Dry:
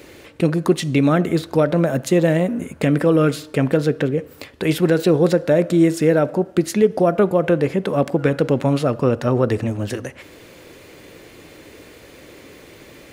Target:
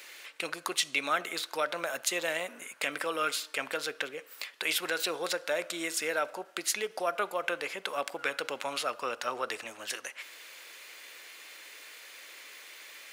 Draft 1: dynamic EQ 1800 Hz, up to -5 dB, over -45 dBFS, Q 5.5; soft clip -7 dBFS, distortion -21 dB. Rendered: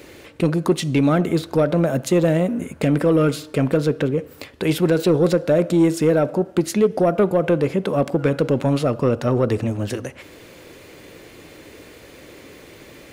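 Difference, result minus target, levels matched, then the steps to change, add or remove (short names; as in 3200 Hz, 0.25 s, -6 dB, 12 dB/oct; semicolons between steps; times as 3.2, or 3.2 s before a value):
1000 Hz band -7.5 dB
add after dynamic EQ: HPF 1400 Hz 12 dB/oct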